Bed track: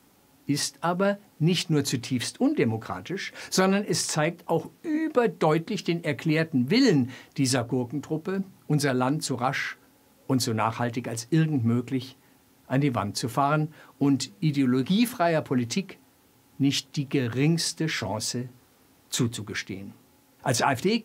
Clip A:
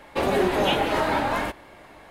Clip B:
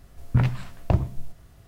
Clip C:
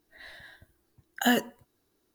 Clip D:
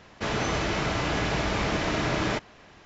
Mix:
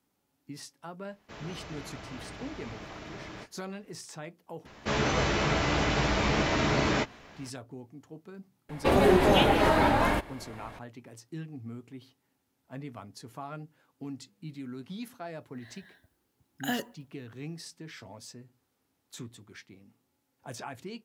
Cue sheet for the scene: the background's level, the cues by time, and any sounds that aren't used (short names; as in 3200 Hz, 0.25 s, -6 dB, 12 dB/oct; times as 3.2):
bed track -17.5 dB
1.08 add D -17 dB + ending taper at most 470 dB/s
4.65 add D -1 dB + doubler 14 ms -5.5 dB
8.69 add A -1 dB + low shelf 230 Hz +7.5 dB
15.42 add C -8 dB + HPF 50 Hz
not used: B